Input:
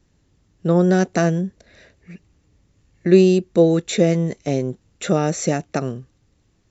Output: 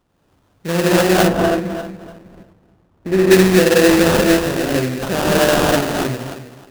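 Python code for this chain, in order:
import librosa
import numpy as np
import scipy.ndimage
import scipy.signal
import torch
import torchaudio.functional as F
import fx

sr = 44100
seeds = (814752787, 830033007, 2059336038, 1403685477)

y = fx.reverse_delay_fb(x, sr, ms=156, feedback_pct=48, wet_db=-7.5)
y = fx.tilt_eq(y, sr, slope=2.0)
y = fx.rev_gated(y, sr, seeds[0], gate_ms=280, shape='rising', drr_db=-6.5)
y = fx.sample_hold(y, sr, seeds[1], rate_hz=2200.0, jitter_pct=20)
y = fx.high_shelf(y, sr, hz=2000.0, db=-11.5, at=(1.26, 3.3), fade=0.02)
y = F.gain(torch.from_numpy(y), -1.0).numpy()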